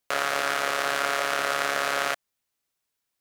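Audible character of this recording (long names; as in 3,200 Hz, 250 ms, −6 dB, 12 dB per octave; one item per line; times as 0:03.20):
background noise floor −82 dBFS
spectral slope −2.0 dB per octave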